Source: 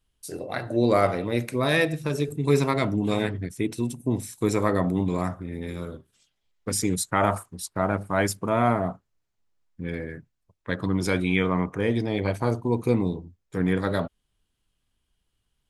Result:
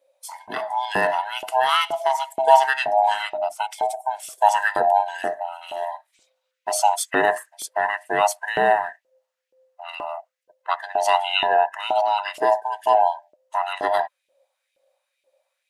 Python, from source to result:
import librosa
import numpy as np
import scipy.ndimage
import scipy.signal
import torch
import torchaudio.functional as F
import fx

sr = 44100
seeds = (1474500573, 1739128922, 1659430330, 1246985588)

y = fx.band_swap(x, sr, width_hz=500)
y = fx.dmg_buzz(y, sr, base_hz=60.0, harmonics=5, level_db=-48.0, tilt_db=-4, odd_only=False, at=(2.35, 3.52), fade=0.02)
y = fx.filter_lfo_highpass(y, sr, shape='saw_up', hz=2.1, low_hz=330.0, high_hz=2700.0, q=2.2)
y = y * librosa.db_to_amplitude(2.0)